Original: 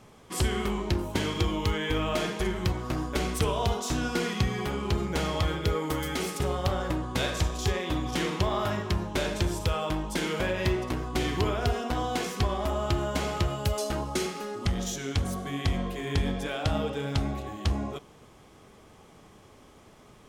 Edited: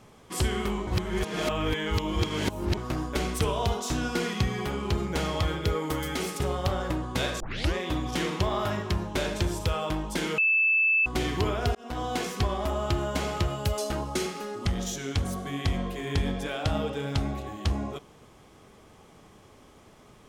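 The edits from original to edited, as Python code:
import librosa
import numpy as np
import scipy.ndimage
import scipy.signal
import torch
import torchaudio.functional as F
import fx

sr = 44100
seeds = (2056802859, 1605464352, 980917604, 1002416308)

y = fx.edit(x, sr, fx.reverse_span(start_s=0.87, length_s=1.9),
    fx.tape_start(start_s=7.4, length_s=0.34),
    fx.bleep(start_s=10.38, length_s=0.68, hz=2630.0, db=-19.5),
    fx.fade_in_span(start_s=11.75, length_s=0.46, curve='qsin'), tone=tone)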